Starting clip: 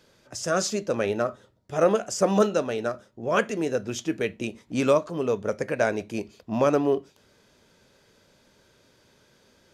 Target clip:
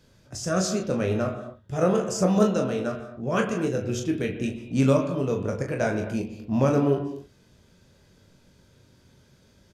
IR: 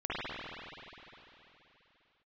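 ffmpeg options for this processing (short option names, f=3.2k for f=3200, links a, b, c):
-filter_complex "[0:a]bass=f=250:g=13,treble=f=4k:g=3,aecho=1:1:22|38:0.473|0.398,asplit=2[a][b];[1:a]atrim=start_sample=2205,afade=t=out:st=0.31:d=0.01,atrim=end_sample=14112[c];[b][c]afir=irnorm=-1:irlink=0,volume=-12.5dB[d];[a][d]amix=inputs=2:normalize=0,volume=-6dB"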